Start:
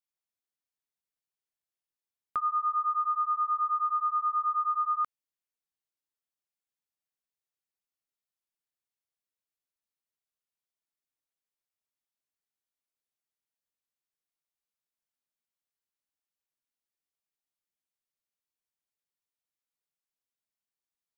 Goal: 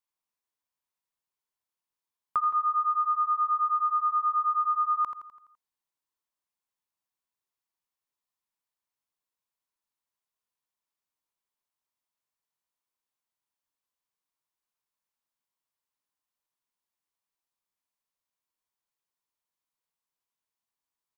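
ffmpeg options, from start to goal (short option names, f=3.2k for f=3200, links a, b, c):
-af "equalizer=f=1k:w=3.2:g=10,aecho=1:1:84|168|252|336|420|504:0.316|0.164|0.0855|0.0445|0.0231|0.012"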